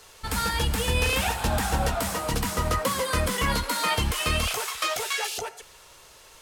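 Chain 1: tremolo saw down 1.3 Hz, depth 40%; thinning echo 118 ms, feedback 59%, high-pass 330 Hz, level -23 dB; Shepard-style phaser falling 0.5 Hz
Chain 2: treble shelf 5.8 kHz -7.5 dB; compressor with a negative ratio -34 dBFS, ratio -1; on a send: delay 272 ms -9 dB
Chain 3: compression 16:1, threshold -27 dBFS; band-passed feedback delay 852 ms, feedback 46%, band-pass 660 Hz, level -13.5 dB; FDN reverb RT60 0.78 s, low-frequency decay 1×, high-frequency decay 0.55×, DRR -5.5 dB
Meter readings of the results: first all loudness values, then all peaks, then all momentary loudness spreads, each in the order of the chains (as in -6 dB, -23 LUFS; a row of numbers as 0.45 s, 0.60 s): -29.0 LUFS, -32.0 LUFS, -24.5 LUFS; -13.5 dBFS, -16.0 dBFS, -11.0 dBFS; 5 LU, 7 LU, 7 LU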